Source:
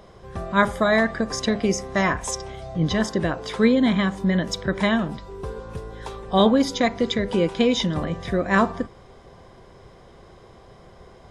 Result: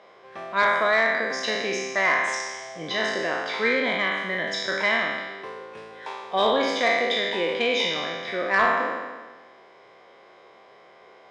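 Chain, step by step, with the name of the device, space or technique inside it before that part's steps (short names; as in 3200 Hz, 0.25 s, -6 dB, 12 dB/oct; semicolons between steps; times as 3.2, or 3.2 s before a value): spectral trails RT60 1.37 s; intercom (BPF 490–4300 Hz; bell 2200 Hz +6.5 dB 0.45 oct; soft clip -7 dBFS, distortion -21 dB); gain -2.5 dB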